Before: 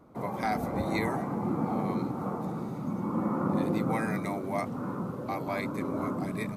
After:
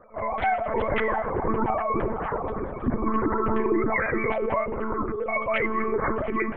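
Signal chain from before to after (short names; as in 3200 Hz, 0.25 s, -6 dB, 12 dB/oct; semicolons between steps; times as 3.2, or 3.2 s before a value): sine-wave speech; limiter -24.5 dBFS, peak gain reduction 8 dB; plate-style reverb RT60 1.1 s, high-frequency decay 0.8×, DRR 14 dB; monotone LPC vocoder at 8 kHz 220 Hz; gain +7.5 dB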